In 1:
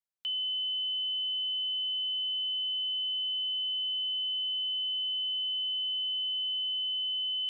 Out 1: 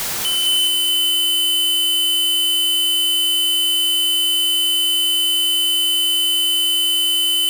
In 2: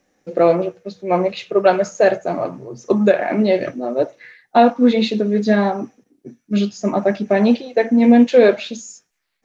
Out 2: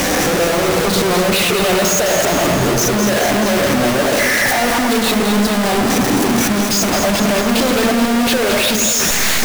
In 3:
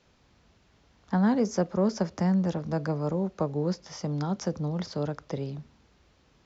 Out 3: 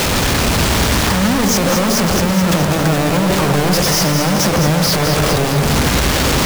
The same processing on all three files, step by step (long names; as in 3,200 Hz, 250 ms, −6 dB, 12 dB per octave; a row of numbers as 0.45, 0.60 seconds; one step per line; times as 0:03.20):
sign of each sample alone
on a send: delay that swaps between a low-pass and a high-pass 106 ms, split 2,000 Hz, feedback 79%, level −4.5 dB
on the sum: loudness normalisation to −14 LKFS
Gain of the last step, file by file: +13.5, +1.0, +13.5 decibels